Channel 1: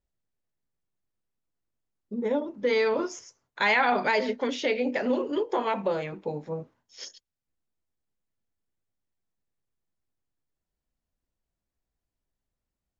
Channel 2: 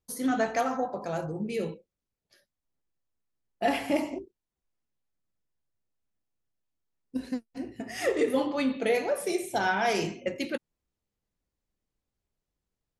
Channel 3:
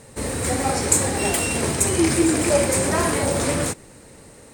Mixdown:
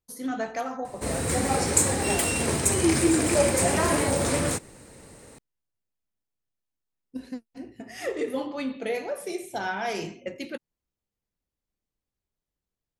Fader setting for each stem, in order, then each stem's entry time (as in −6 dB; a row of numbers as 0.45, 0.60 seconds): muted, −3.5 dB, −3.0 dB; muted, 0.00 s, 0.85 s